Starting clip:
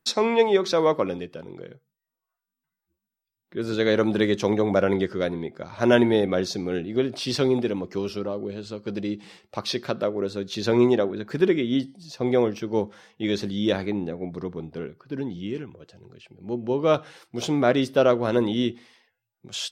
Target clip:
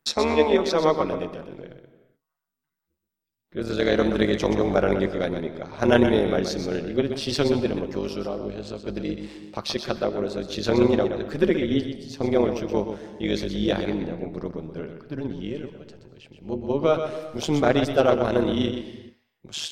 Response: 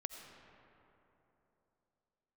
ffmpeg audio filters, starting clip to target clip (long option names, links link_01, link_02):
-filter_complex "[0:a]tremolo=f=150:d=0.788,asplit=2[link_01][link_02];[1:a]atrim=start_sample=2205,afade=type=out:start_time=0.36:duration=0.01,atrim=end_sample=16317,adelay=125[link_03];[link_02][link_03]afir=irnorm=-1:irlink=0,volume=-5dB[link_04];[link_01][link_04]amix=inputs=2:normalize=0,volume=3dB"